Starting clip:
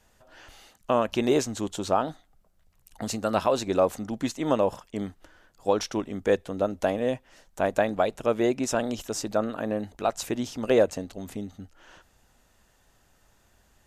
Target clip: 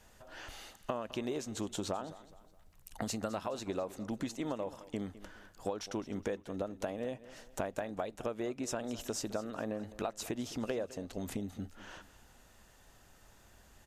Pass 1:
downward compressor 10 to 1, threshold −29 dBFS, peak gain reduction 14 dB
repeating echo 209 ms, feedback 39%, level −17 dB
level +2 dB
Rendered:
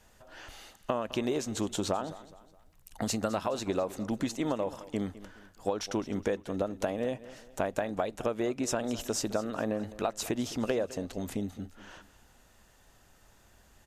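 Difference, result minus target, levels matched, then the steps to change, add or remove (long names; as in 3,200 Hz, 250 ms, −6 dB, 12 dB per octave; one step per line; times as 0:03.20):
downward compressor: peak gain reduction −6.5 dB
change: downward compressor 10 to 1, threshold −36 dBFS, peak gain reduction 20.5 dB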